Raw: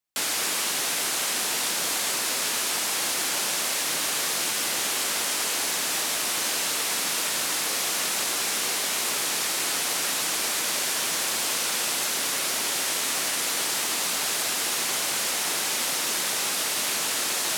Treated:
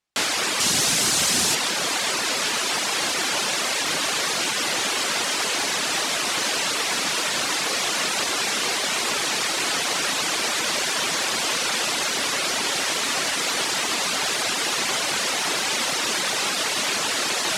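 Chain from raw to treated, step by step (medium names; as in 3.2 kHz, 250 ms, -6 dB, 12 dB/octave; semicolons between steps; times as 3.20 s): reverb removal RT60 0.77 s; 0.60–1.55 s: tone controls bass +14 dB, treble +9 dB; saturation -16.5 dBFS, distortion -21 dB; distance through air 62 m; trim +8.5 dB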